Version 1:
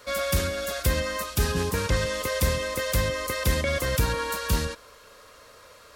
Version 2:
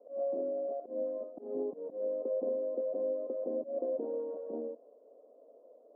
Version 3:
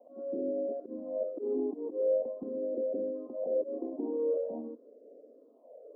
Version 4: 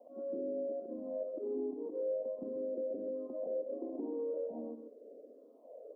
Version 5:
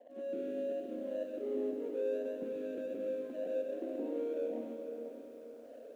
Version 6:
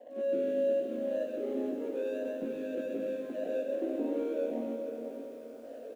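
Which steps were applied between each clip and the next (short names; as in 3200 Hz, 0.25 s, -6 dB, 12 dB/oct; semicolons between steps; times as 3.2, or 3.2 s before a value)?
Chebyshev band-pass 240–710 Hz, order 4; tilt +2.5 dB/oct; auto swell 0.147 s
bell 300 Hz +14.5 dB 2.9 oct; limiter -19.5 dBFS, peak gain reduction 7 dB; phaser stages 6, 0.44 Hz, lowest notch 140–1000 Hz; gain -2 dB
echo 0.13 s -8.5 dB; compressor 2:1, threshold -40 dBFS, peak gain reduction 9 dB
median filter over 25 samples; diffused feedback echo 0.472 s, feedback 40%, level -8.5 dB; lo-fi delay 96 ms, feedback 80%, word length 11-bit, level -11 dB
doubler 18 ms -4.5 dB; gain +5 dB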